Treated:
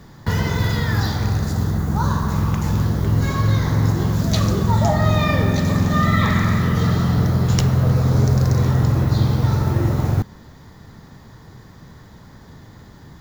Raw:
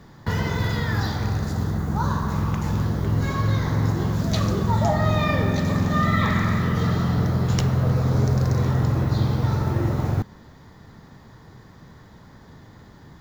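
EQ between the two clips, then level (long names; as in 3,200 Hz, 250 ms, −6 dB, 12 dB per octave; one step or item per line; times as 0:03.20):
low-shelf EQ 170 Hz +3.5 dB
high-shelf EQ 5,100 Hz +6.5 dB
+2.0 dB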